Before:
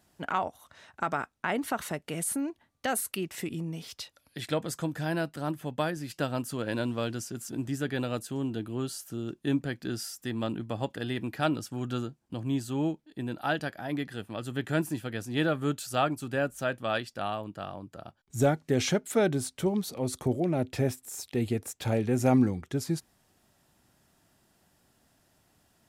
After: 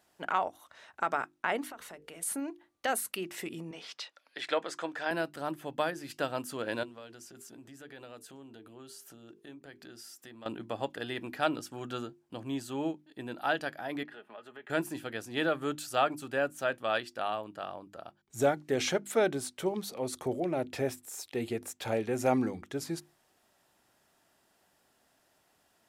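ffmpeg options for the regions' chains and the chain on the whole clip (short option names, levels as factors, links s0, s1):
-filter_complex "[0:a]asettb=1/sr,asplit=3[s0][s1][s2];[s0]atrim=end=1.674[s3];[s1]atrim=start=1.67:end=2.23,asetpts=PTS-STARTPTS,afade=t=in:d=0.004:c=qsin,afade=t=out:st=0.556:d=0.004:c=qsin,bandreject=f=50:t=h:w=6,bandreject=f=100:t=h:w=6,bandreject=f=150:t=h:w=6,bandreject=f=200:t=h:w=6,bandreject=f=250:t=h:w=6,bandreject=f=300:t=h:w=6,bandreject=f=350:t=h:w=6,bandreject=f=400:t=h:w=6,bandreject=f=450:t=h:w=6,bandreject=f=500:t=h:w=6,acompressor=threshold=0.00794:ratio=5:attack=3.2:release=140:knee=1:detection=peak,aeval=exprs='val(0)+0.000501*(sin(2*PI*60*n/s)+sin(2*PI*2*60*n/s)/2+sin(2*PI*3*60*n/s)/3+sin(2*PI*4*60*n/s)/4+sin(2*PI*5*60*n/s)/5)':c=same[s4];[s2]atrim=start=2.226[s5];[s3][s4]acrossfade=d=0.004:c1=hsin:c2=qsin[s6];[s6][s5]acrossfade=d=0.004:c1=qsin:c2=hsin,asettb=1/sr,asplit=3[s7][s8][s9];[s7]atrim=end=3.714[s10];[s8]atrim=start=3.71:end=5.11,asetpts=PTS-STARTPTS,afade=t=in:d=0.004:c=qsin,afade=t=out:st=1.396:d=0.004:c=qsin,highpass=320,lowpass=6400,equalizer=f=1600:w=0.66:g=4.5[s11];[s9]atrim=start=5.106[s12];[s10][s11]acrossfade=d=0.004:c1=hsin:c2=qsin[s13];[s13][s12]acrossfade=d=0.004:c1=qsin:c2=hsin,asettb=1/sr,asplit=3[s14][s15][s16];[s14]atrim=end=6.834[s17];[s15]atrim=start=6.83:end=10.46,asetpts=PTS-STARTPTS,afade=t=in:d=0.004:c=qsin,afade=t=out:st=3.626:d=0.004:c=qsin,bandreject=f=50:t=h:w=6,bandreject=f=100:t=h:w=6,bandreject=f=150:t=h:w=6,bandreject=f=200:t=h:w=6,bandreject=f=250:t=h:w=6,bandreject=f=300:t=h:w=6,bandreject=f=350:t=h:w=6,bandreject=f=400:t=h:w=6,bandreject=f=450:t=h:w=6,acompressor=threshold=0.00631:ratio=4:attack=3.2:release=140:knee=1:detection=peak[s18];[s16]atrim=start=10.456[s19];[s17][s18]acrossfade=d=0.004:c1=hsin:c2=qsin[s20];[s20][s19]acrossfade=d=0.004:c1=qsin:c2=hsin,asettb=1/sr,asplit=3[s21][s22][s23];[s21]atrim=end=14.034[s24];[s22]atrim=start=14.03:end=14.7,asetpts=PTS-STARTPTS,afade=t=in:d=0.004:c=qsin,afade=t=out:st=0.666:d=0.004:c=qsin,acrossover=split=380 3000:gain=0.251 1 0.126[s25][s26][s27];[s25][s26][s27]amix=inputs=3:normalize=0,aecho=1:1:4.8:0.53,atrim=end_sample=29547,acompressor=threshold=0.00562:ratio=3:attack=3.2:release=140:knee=1:detection=peak[s28];[s23]atrim=start=14.696[s29];[s24][s28]acrossfade=d=0.004:c1=hsin:c2=qsin[s30];[s30][s29]acrossfade=d=0.004:c1=qsin:c2=hsin,bass=f=250:g=-12,treble=f=4000:g=-3,bandreject=f=50:t=h:w=6,bandreject=f=100:t=h:w=6,bandreject=f=150:t=h:w=6,bandreject=f=200:t=h:w=6,bandreject=f=250:t=h:w=6,bandreject=f=300:t=h:w=6,bandreject=f=350:t=h:w=6"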